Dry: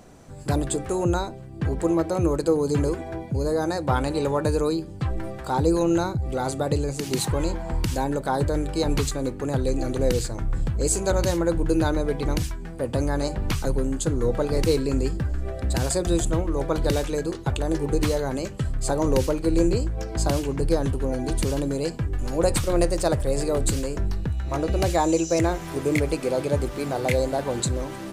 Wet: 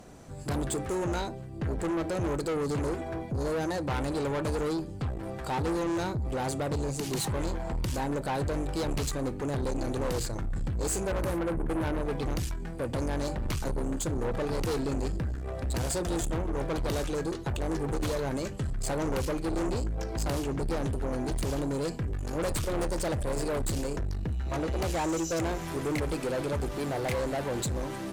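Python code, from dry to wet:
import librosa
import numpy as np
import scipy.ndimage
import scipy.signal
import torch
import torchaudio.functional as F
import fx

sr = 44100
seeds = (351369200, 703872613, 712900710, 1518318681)

y = fx.band_shelf(x, sr, hz=4500.0, db=-12.0, octaves=1.7, at=(11.05, 12.03))
y = fx.tube_stage(y, sr, drive_db=27.0, bias=0.3)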